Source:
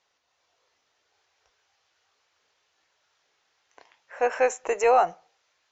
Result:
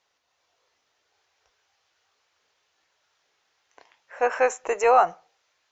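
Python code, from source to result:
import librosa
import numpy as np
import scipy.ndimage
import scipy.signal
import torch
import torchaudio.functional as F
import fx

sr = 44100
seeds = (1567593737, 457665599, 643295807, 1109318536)

y = fx.dynamic_eq(x, sr, hz=1200.0, q=1.7, threshold_db=-37.0, ratio=4.0, max_db=6)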